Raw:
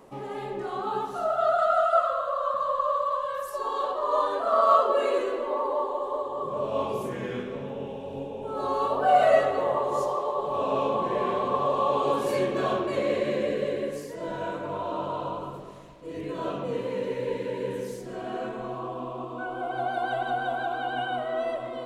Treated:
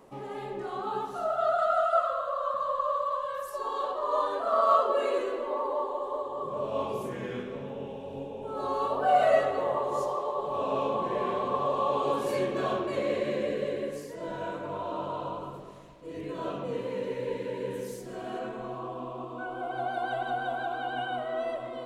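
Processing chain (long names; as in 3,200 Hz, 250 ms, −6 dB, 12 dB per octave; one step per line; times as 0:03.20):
0:17.72–0:18.38: high-shelf EQ 9,500 Hz → 5,400 Hz +7 dB
level −3 dB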